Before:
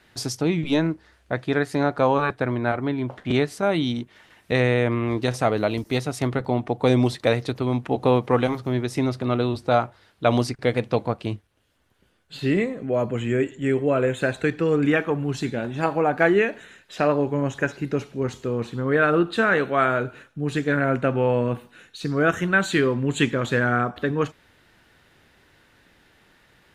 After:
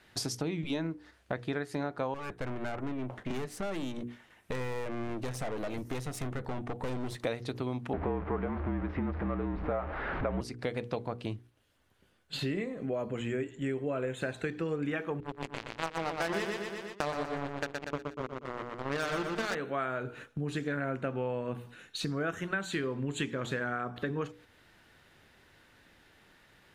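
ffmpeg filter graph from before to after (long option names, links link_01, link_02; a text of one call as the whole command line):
ffmpeg -i in.wav -filter_complex "[0:a]asettb=1/sr,asplit=3[link_01][link_02][link_03];[link_01]atrim=end=2.144[link_04];[link_02]atrim=start=2.14:end=7.25,asetpts=PTS-STARTPTS,afade=type=in:duration=0.004:curve=qsin,afade=type=out:start_time=5.106:duration=0.004:curve=qsin,aeval=exprs='(tanh(22.4*val(0)+0.6)-tanh(0.6))/22.4':channel_layout=same,equalizer=frequency=4400:width_type=o:width=0.9:gain=-5[link_05];[link_03]atrim=start=7.246[link_06];[link_04][link_05]acrossfade=duration=0.004:curve1=hsin:curve2=qsin[link_07];[link_07][link_06]acrossfade=duration=0.004:curve1=qsin:curve2=hsin,asettb=1/sr,asplit=3[link_08][link_09][link_10];[link_08]atrim=end=7.934[link_11];[link_09]atrim=start=7.93:end=10.41,asetpts=PTS-STARTPTS,afade=type=in:duration=0.004:curve=qsin,afade=type=out:start_time=2.476:duration=0.004:curve=qsin,aeval=exprs='val(0)+0.5*0.1*sgn(val(0))':channel_layout=same,lowpass=frequency=2000:width=0.5412,lowpass=frequency=2000:width=1.3066,afreqshift=-49[link_12];[link_10]atrim=start=10.406[link_13];[link_11][link_12]acrossfade=duration=0.004:curve1=hsin:curve2=qsin[link_14];[link_14][link_13]acrossfade=duration=0.004:curve1=qsin:curve2=hsin,asettb=1/sr,asplit=3[link_15][link_16][link_17];[link_15]atrim=end=15.204[link_18];[link_16]atrim=start=15.2:end=19.55,asetpts=PTS-STARTPTS,afade=type=in:duration=0.004:curve=qsin,afade=type=out:start_time=4.346:duration=0.004:curve=qsin,lowpass=9200,acrusher=bits=2:mix=0:aa=0.5,aecho=1:1:120|240|360|480|600:0.562|0.247|0.109|0.0479|0.0211,atrim=end_sample=191835[link_19];[link_17]atrim=start=19.546[link_20];[link_18][link_19]acrossfade=duration=0.004:curve1=hsin:curve2=qsin[link_21];[link_21][link_20]acrossfade=duration=0.004:curve1=qsin:curve2=hsin,bandreject=frequency=60:width_type=h:width=6,bandreject=frequency=120:width_type=h:width=6,bandreject=frequency=180:width_type=h:width=6,bandreject=frequency=240:width_type=h:width=6,bandreject=frequency=300:width_type=h:width=6,bandreject=frequency=360:width_type=h:width=6,bandreject=frequency=420:width_type=h:width=6,bandreject=frequency=480:width_type=h:width=6,agate=range=-6dB:threshold=-45dB:ratio=16:detection=peak,acompressor=threshold=-36dB:ratio=4,volume=2.5dB" out.wav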